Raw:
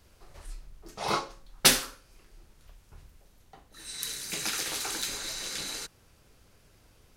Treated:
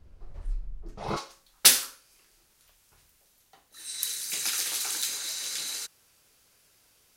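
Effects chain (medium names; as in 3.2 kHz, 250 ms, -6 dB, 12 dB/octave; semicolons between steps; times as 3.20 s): tilt EQ -3 dB/octave, from 1.16 s +3 dB/octave; trim -4.5 dB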